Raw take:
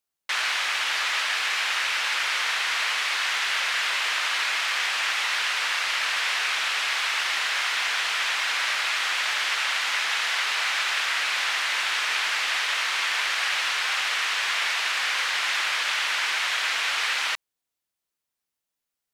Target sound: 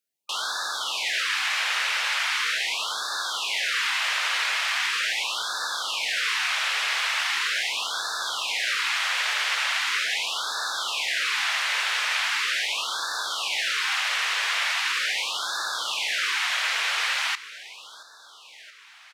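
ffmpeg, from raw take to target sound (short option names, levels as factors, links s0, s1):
-af "highpass=130,aecho=1:1:676|1352|2028|2704|3380|4056:0.141|0.0833|0.0492|0.029|0.0171|0.0101,afftfilt=real='re*(1-between(b*sr/1024,260*pow(2500/260,0.5+0.5*sin(2*PI*0.4*pts/sr))/1.41,260*pow(2500/260,0.5+0.5*sin(2*PI*0.4*pts/sr))*1.41))':imag='im*(1-between(b*sr/1024,260*pow(2500/260,0.5+0.5*sin(2*PI*0.4*pts/sr))/1.41,260*pow(2500/260,0.5+0.5*sin(2*PI*0.4*pts/sr))*1.41))':win_size=1024:overlap=0.75"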